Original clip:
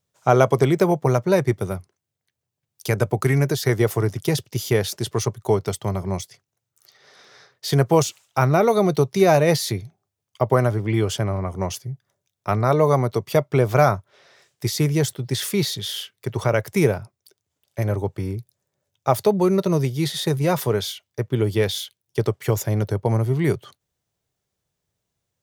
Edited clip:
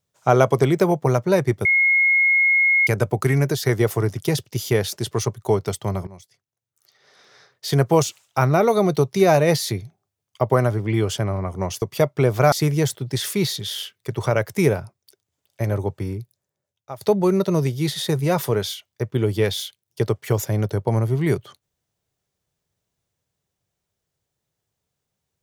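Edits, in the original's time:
1.65–2.87 s: bleep 2.16 kHz -13.5 dBFS
6.07–7.81 s: fade in linear, from -19.5 dB
11.82–13.17 s: delete
13.87–14.70 s: delete
18.20–19.19 s: fade out, to -21 dB

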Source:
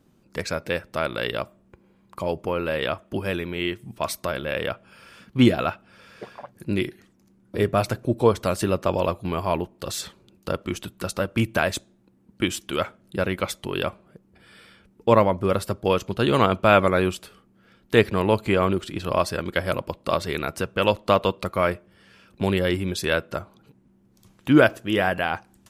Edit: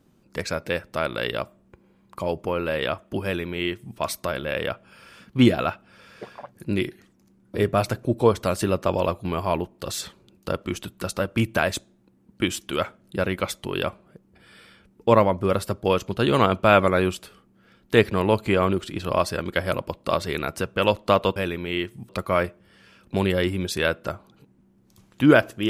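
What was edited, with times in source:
3.24–3.97 s: copy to 21.36 s

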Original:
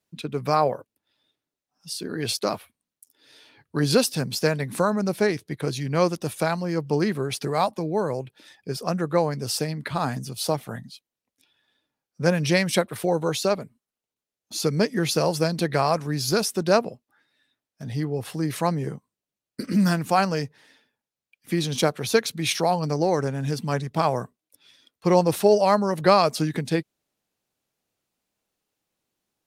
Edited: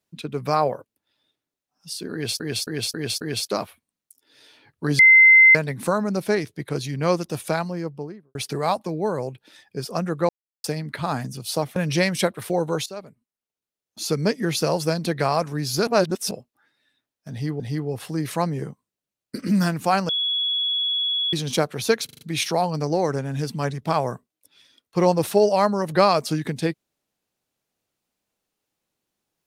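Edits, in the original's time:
2.13–2.40 s: loop, 5 plays
3.91–4.47 s: bleep 2.07 kHz -8 dBFS
6.44–7.27 s: studio fade out
9.21–9.56 s: mute
10.68–12.30 s: delete
13.40–14.59 s: fade in, from -16 dB
16.41–16.85 s: reverse
17.85–18.14 s: loop, 2 plays
20.34–21.58 s: bleep 3.37 kHz -20.5 dBFS
22.30 s: stutter 0.04 s, 5 plays

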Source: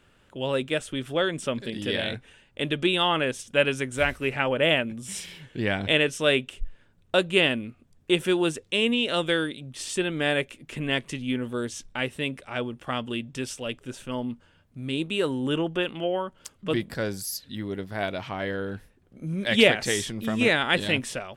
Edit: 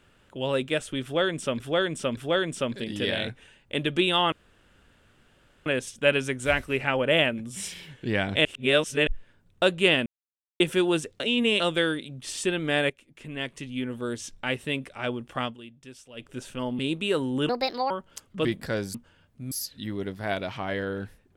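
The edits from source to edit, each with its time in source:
1.03–1.60 s: loop, 3 plays
3.18 s: insert room tone 1.34 s
5.97–6.59 s: reverse
7.58–8.12 s: mute
8.72–9.12 s: reverse
10.42–11.91 s: fade in, from -14 dB
12.96–13.80 s: dip -14 dB, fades 0.13 s
14.31–14.88 s: move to 17.23 s
15.58–16.19 s: speed 147%

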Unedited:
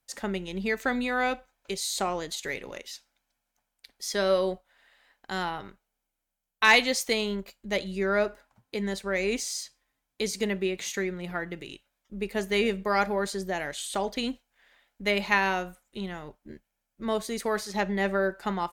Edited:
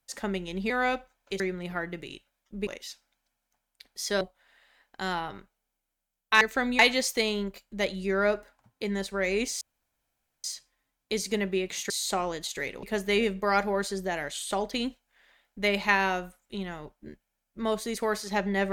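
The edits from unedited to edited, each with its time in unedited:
0.70–1.08 s: move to 6.71 s
1.78–2.71 s: swap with 10.99–12.26 s
4.25–4.51 s: delete
9.53 s: insert room tone 0.83 s

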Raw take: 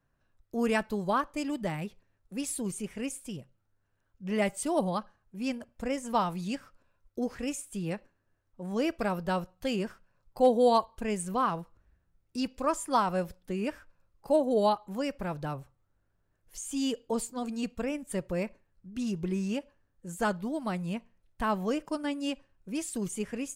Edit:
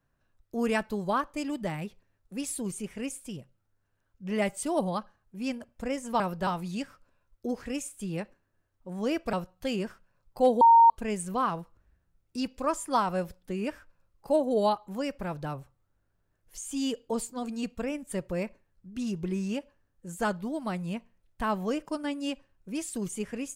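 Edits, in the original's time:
9.06–9.33 s: move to 6.20 s
10.61–10.90 s: bleep 923 Hz -13 dBFS

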